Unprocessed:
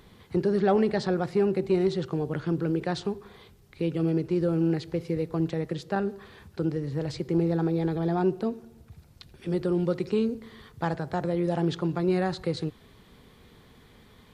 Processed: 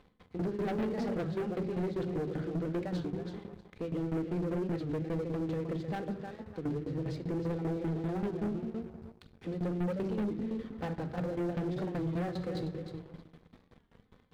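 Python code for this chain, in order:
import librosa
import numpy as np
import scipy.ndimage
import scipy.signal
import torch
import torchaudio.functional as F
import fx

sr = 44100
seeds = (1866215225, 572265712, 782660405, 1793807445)

p1 = fx.lowpass(x, sr, hz=1600.0, slope=6)
p2 = fx.hum_notches(p1, sr, base_hz=50, count=6)
p3 = fx.room_shoebox(p2, sr, seeds[0], volume_m3=3300.0, walls='furnished', distance_m=2.0)
p4 = fx.tremolo_shape(p3, sr, shape='saw_down', hz=5.1, depth_pct=90)
p5 = p4 + fx.echo_feedback(p4, sr, ms=312, feedback_pct=20, wet_db=-10, dry=0)
p6 = fx.leveller(p5, sr, passes=2)
p7 = 10.0 ** (-22.0 / 20.0) * np.tanh(p6 / 10.0 ** (-22.0 / 20.0))
p8 = fx.dynamic_eq(p7, sr, hz=970.0, q=1.3, threshold_db=-43.0, ratio=4.0, max_db=-5)
p9 = fx.record_warp(p8, sr, rpm=33.33, depth_cents=160.0)
y = p9 * librosa.db_to_amplitude(-6.5)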